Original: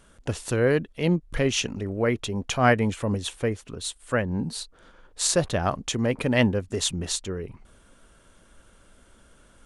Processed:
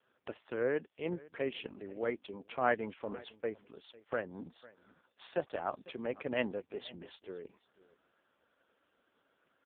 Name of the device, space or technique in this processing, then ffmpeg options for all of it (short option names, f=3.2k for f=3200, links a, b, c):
satellite phone: -filter_complex "[0:a]asettb=1/sr,asplit=3[a][b][c];[a]atrim=end=2.204[d];[b]atrim=start=2.2:end=3.58,asetpts=PTS-STARTPTS,afade=t=in:d=0.004:c=qsin,afade=t=out:st=1.376:d=0.004:c=qsin,agate=range=-20dB:threshold=-35dB:ratio=16:detection=peak[e];[c]atrim=start=3.576[f];[d][e]acrossfade=d=0.004:c1=hsin:c2=qsin[g];[g][f]acrossfade=d=0.004:c1=qsin:c2=hsin,highpass=320,lowpass=3.1k,aecho=1:1:499:0.0891,volume=-9dB" -ar 8000 -c:a libopencore_amrnb -b:a 4750